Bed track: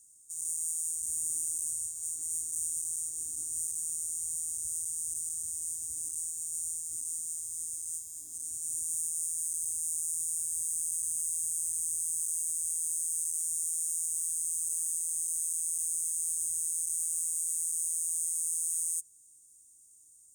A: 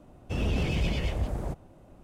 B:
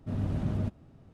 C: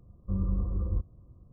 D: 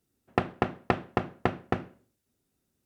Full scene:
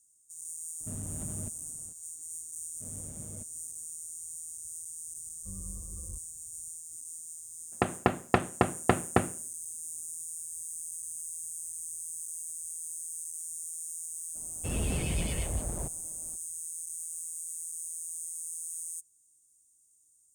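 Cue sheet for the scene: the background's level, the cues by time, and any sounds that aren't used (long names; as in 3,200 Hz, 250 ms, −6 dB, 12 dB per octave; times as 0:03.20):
bed track −7 dB
0:00.80: mix in B −3 dB + downward compressor, threshold −33 dBFS
0:02.74: mix in B −16 dB + hollow resonant body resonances 500/2,200/3,400 Hz, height 8 dB, ringing for 25 ms
0:05.17: mix in C −14.5 dB
0:07.44: mix in D −4 dB + automatic gain control
0:14.34: mix in A −4 dB, fades 0.02 s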